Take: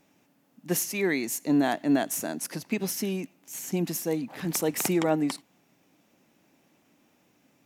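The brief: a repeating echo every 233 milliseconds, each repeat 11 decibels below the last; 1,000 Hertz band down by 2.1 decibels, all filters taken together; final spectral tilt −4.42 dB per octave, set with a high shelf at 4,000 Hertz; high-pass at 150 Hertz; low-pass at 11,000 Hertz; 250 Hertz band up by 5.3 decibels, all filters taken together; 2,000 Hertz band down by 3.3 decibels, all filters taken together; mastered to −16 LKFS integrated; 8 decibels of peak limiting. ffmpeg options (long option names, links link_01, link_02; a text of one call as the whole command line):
ffmpeg -i in.wav -af "highpass=150,lowpass=11000,equalizer=frequency=250:width_type=o:gain=7.5,equalizer=frequency=1000:width_type=o:gain=-3.5,equalizer=frequency=2000:width_type=o:gain=-4,highshelf=frequency=4000:gain=3.5,alimiter=limit=-17.5dB:level=0:latency=1,aecho=1:1:233|466|699:0.282|0.0789|0.0221,volume=11dB" out.wav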